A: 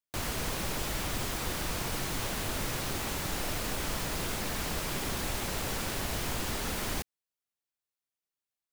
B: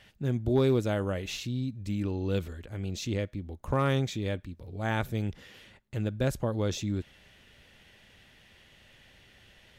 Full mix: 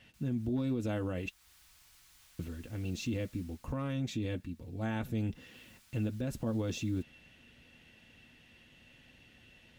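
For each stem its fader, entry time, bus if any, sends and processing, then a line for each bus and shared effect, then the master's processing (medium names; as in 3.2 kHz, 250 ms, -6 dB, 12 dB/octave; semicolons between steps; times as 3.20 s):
1.15 s -20 dB -> 1.53 s -8.5 dB -> 3.40 s -8.5 dB -> 4.08 s -21 dB -> 5.35 s -21 dB -> 5.72 s -10.5 dB, 0.00 s, no send, graphic EQ 125/250/500 Hz -6/-5/-6 dB; amplifier tone stack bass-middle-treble 5-5-5; auto duck -8 dB, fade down 1.55 s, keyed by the second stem
-4.0 dB, 0.00 s, muted 1.29–2.39 s, no send, small resonant body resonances 220/2700 Hz, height 11 dB, ringing for 30 ms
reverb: none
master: comb of notches 200 Hz; peak limiter -26.5 dBFS, peak gain reduction 10 dB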